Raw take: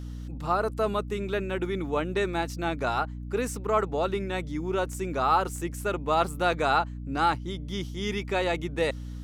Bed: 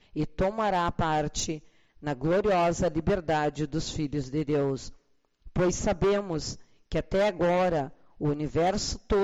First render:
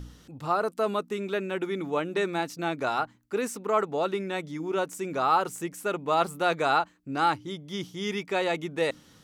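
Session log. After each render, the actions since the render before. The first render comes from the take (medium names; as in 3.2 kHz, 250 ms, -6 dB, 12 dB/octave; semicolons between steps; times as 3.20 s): de-hum 60 Hz, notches 5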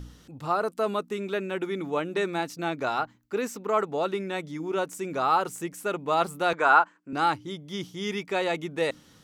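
2.70–3.69 s: peaking EQ 9.3 kHz -14 dB 0.2 oct; 6.53–7.13 s: cabinet simulation 250–8100 Hz, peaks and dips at 990 Hz +9 dB, 1.5 kHz +9 dB, 4 kHz -8 dB, 6.2 kHz -4 dB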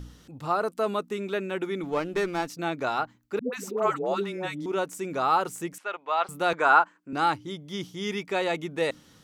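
1.83–2.47 s: sliding maximum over 5 samples; 3.39–4.66 s: phase dispersion highs, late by 137 ms, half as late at 470 Hz; 5.78–6.29 s: Butterworth band-pass 1.6 kHz, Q 0.54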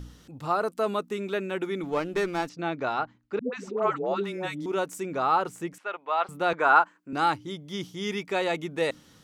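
2.49–4.24 s: distance through air 130 m; 5.03–6.76 s: treble shelf 5.5 kHz -10.5 dB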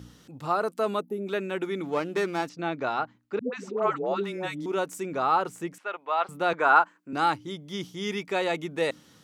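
high-pass 100 Hz; 1.00–1.27 s: time-frequency box 890–10000 Hz -18 dB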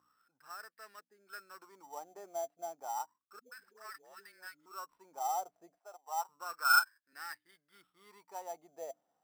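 wah-wah 0.31 Hz 680–1800 Hz, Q 15; sample-rate reducer 6.7 kHz, jitter 0%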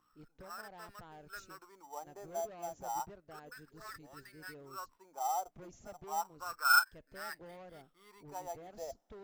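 add bed -27.5 dB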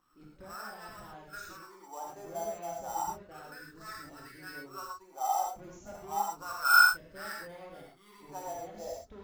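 pre-echo 54 ms -22.5 dB; gated-style reverb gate 150 ms flat, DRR -2.5 dB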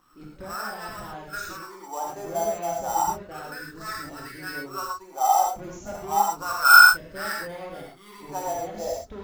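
trim +10.5 dB; peak limiter -1 dBFS, peak gain reduction 2.5 dB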